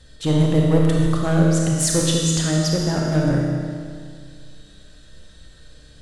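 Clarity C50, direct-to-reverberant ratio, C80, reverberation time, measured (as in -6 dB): -0.5 dB, -2.0 dB, 1.0 dB, 2.1 s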